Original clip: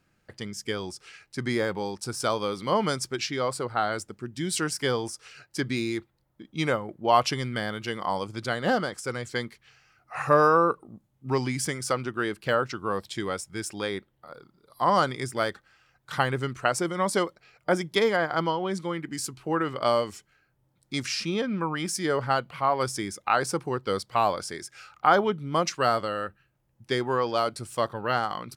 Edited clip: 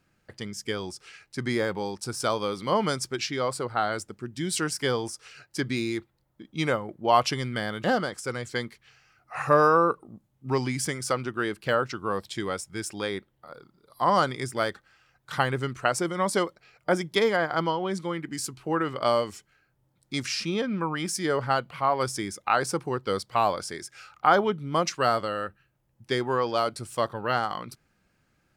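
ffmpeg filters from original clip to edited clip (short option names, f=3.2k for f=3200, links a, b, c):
-filter_complex "[0:a]asplit=2[a][b];[a]atrim=end=7.842[c];[b]atrim=start=8.638[d];[c][d]acrossfade=d=0.004:c1=hsin:c2=hsin"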